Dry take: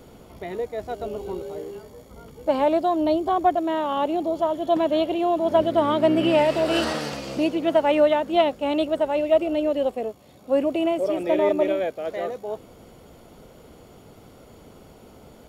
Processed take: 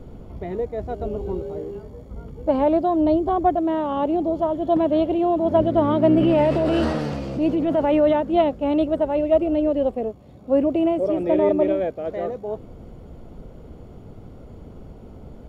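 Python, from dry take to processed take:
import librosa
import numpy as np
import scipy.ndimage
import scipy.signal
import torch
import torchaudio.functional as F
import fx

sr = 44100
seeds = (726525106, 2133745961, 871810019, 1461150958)

y = fx.transient(x, sr, attack_db=-6, sustain_db=4, at=(6.18, 8.21))
y = fx.tilt_eq(y, sr, slope=-3.5)
y = y * librosa.db_to_amplitude(-1.5)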